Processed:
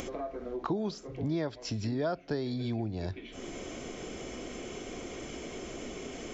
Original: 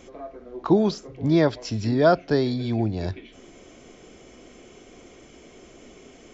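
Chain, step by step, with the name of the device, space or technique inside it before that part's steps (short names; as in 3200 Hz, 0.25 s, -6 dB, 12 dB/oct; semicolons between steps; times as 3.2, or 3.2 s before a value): upward and downward compression (upward compressor, threshold -23 dBFS; compressor 4:1, threshold -24 dBFS, peak gain reduction 10.5 dB); gain -5.5 dB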